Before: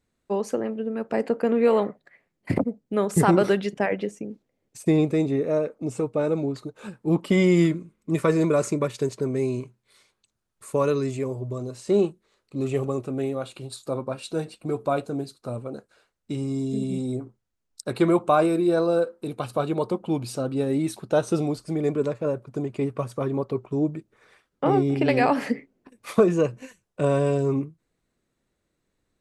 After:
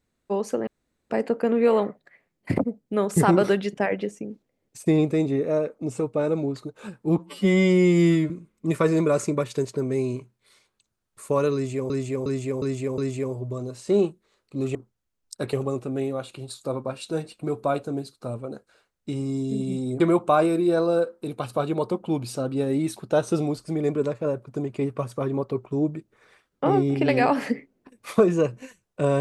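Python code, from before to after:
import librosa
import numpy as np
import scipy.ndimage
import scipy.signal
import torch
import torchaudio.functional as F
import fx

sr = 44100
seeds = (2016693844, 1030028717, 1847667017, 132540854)

y = fx.edit(x, sr, fx.room_tone_fill(start_s=0.67, length_s=0.43),
    fx.stretch_span(start_s=7.18, length_s=0.56, factor=2.0),
    fx.repeat(start_s=10.98, length_s=0.36, count=5),
    fx.move(start_s=17.22, length_s=0.78, to_s=12.75), tone=tone)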